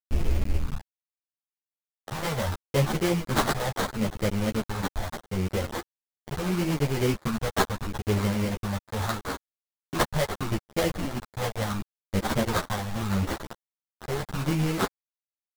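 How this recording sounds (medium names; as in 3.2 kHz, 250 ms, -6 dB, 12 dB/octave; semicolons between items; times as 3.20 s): a quantiser's noise floor 6-bit, dither none; phasing stages 4, 0.76 Hz, lowest notch 300–2200 Hz; aliases and images of a low sample rate 2.6 kHz, jitter 20%; a shimmering, thickened sound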